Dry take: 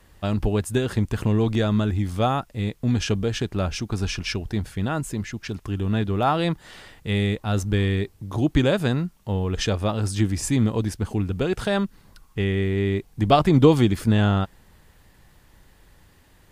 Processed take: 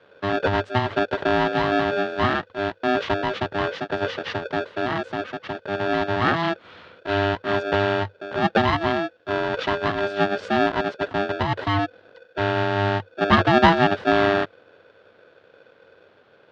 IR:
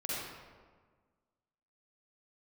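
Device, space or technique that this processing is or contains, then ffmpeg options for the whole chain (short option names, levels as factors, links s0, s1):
ring modulator pedal into a guitar cabinet: -af "aeval=exprs='val(0)*sgn(sin(2*PI*500*n/s))':c=same,highpass=97,equalizer=f=98:t=q:w=4:g=9,equalizer=f=1600:t=q:w=4:g=4,equalizer=f=2300:t=q:w=4:g=-6,lowpass=f=3600:w=0.5412,lowpass=f=3600:w=1.3066"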